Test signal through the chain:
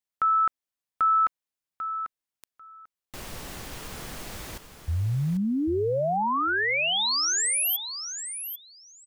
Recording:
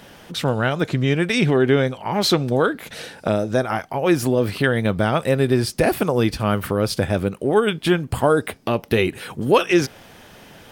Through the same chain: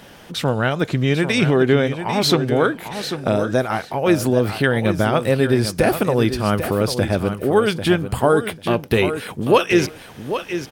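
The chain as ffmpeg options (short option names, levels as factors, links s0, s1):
-af "aecho=1:1:794|1588:0.335|0.0502,volume=1.12"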